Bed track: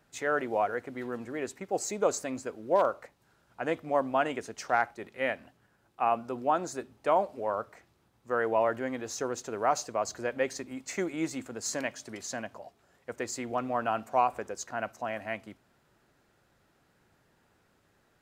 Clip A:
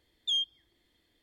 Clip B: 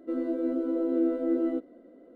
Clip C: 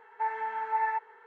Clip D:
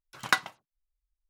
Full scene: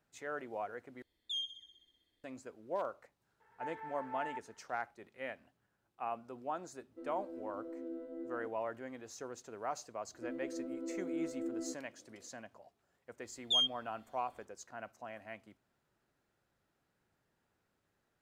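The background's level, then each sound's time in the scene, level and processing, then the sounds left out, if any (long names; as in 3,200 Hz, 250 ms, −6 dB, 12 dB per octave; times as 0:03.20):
bed track −12.5 dB
0:01.02: overwrite with A −9.5 dB + echo machine with several playback heads 63 ms, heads first and second, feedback 55%, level −17.5 dB
0:03.40: mix in C −13.5 dB
0:06.89: mix in B −17.5 dB, fades 0.10 s + double-tracking delay 14 ms −10.5 dB
0:10.14: mix in B −13 dB
0:13.23: mix in A −1 dB
not used: D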